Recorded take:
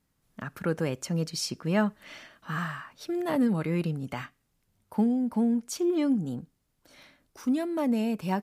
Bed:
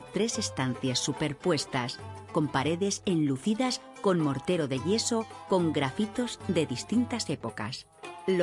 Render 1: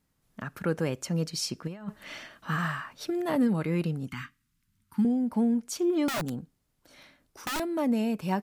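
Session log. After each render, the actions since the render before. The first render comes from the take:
0:01.67–0:03.11: compressor whose output falls as the input rises −31 dBFS, ratio −0.5
0:04.09–0:05.05: Chebyshev band-stop filter 250–1,300 Hz
0:06.08–0:07.60: wrap-around overflow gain 26 dB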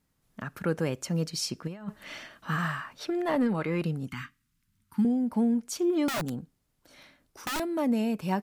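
0:00.86–0:01.39: floating-point word with a short mantissa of 6 bits
0:02.99–0:03.82: mid-hump overdrive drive 11 dB, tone 2,300 Hz, clips at −16 dBFS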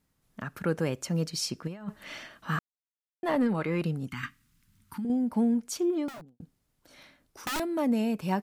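0:02.59–0:03.23: silence
0:04.23–0:05.10: compressor whose output falls as the input rises −31 dBFS
0:05.73–0:06.40: fade out and dull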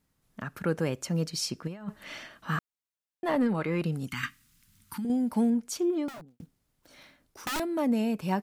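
0:03.92–0:05.50: high-shelf EQ 2,000 Hz +8.5 dB
0:06.30–0:07.44: one scale factor per block 5 bits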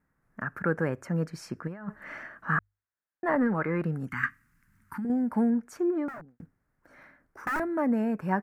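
high shelf with overshoot 2,400 Hz −12.5 dB, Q 3
mains-hum notches 50/100 Hz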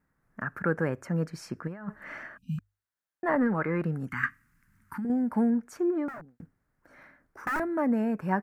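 0:02.38–0:02.59: time-frequency box erased 260–2,400 Hz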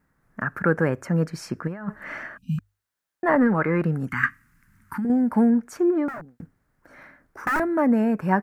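level +6.5 dB

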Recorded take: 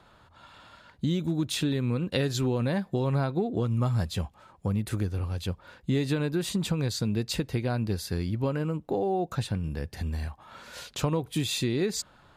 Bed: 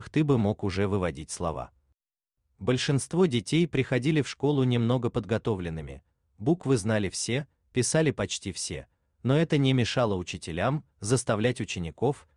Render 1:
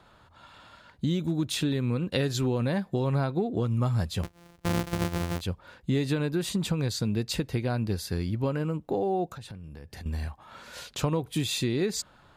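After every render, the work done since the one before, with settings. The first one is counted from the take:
0:04.23–0:05.41: samples sorted by size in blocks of 256 samples
0:09.30–0:10.06: downward compressor 12 to 1, threshold −38 dBFS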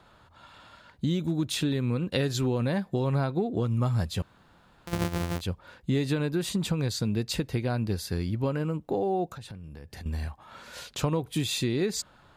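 0:04.22–0:04.87: fill with room tone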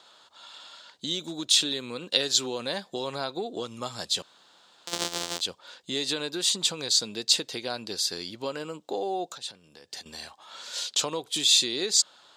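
high-pass filter 420 Hz 12 dB per octave
flat-topped bell 5,100 Hz +12.5 dB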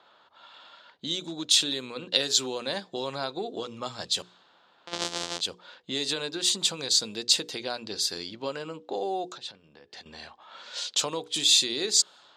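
mains-hum notches 60/120/180/240/300/360/420/480 Hz
low-pass that shuts in the quiet parts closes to 2,200 Hz, open at −24.5 dBFS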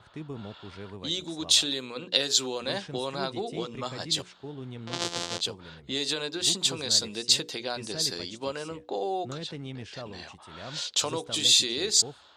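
mix in bed −15.5 dB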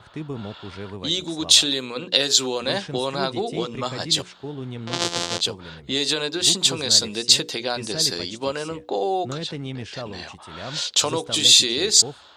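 level +7 dB
brickwall limiter −1 dBFS, peak gain reduction 2.5 dB

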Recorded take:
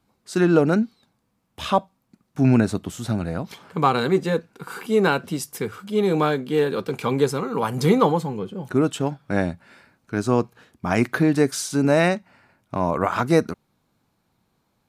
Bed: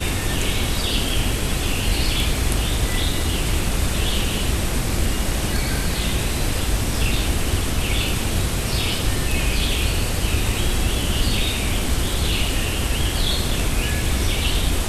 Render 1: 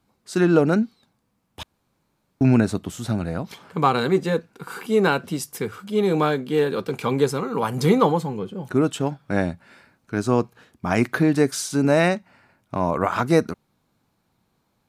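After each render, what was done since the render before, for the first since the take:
0:01.63–0:02.41: fill with room tone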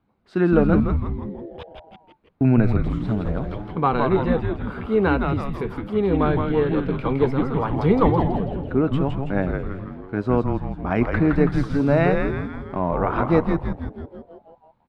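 high-frequency loss of the air 410 metres
echo with shifted repeats 164 ms, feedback 58%, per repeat −140 Hz, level −3.5 dB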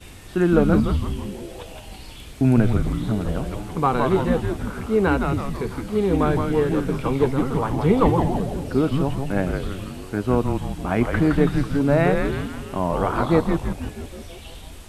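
mix in bed −19.5 dB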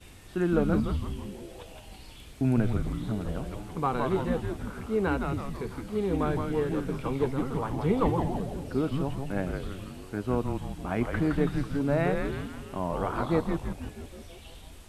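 level −8 dB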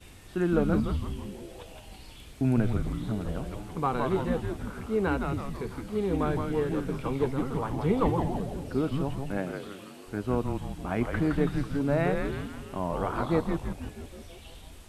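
0:09.36–0:10.06: high-pass filter 150 Hz → 330 Hz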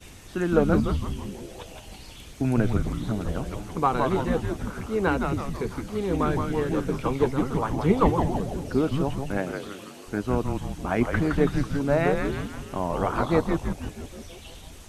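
parametric band 6,200 Hz +6 dB 0.38 octaves
harmonic and percussive parts rebalanced percussive +7 dB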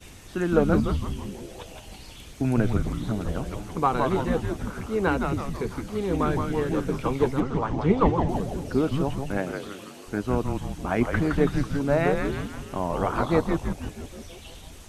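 0:07.40–0:08.29: high-frequency loss of the air 96 metres

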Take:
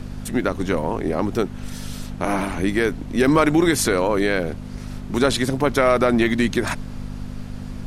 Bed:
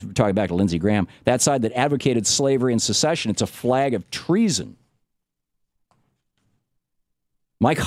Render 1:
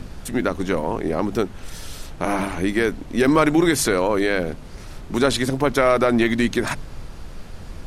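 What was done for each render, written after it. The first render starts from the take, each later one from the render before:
hum removal 50 Hz, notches 5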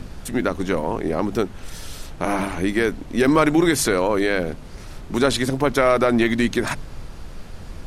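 no processing that can be heard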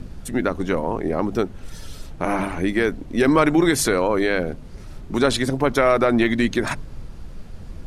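broadband denoise 7 dB, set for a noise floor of −38 dBFS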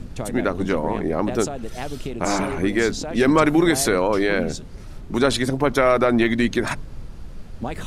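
mix in bed −11.5 dB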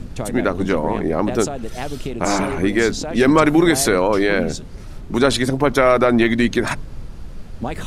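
level +3 dB
brickwall limiter −2 dBFS, peak gain reduction 1 dB

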